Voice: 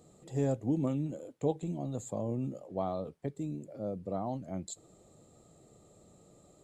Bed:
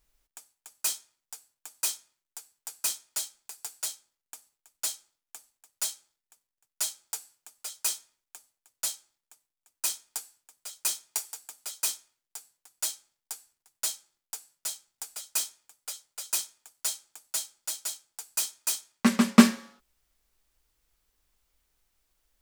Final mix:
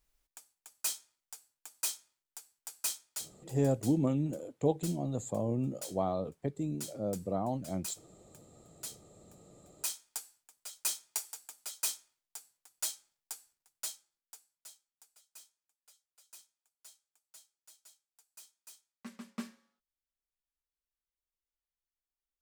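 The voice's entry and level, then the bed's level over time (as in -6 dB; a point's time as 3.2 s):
3.20 s, +2.0 dB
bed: 2.94 s -5 dB
3.56 s -13 dB
8.74 s -13 dB
10.19 s -4.5 dB
13.5 s -4.5 dB
15.26 s -25.5 dB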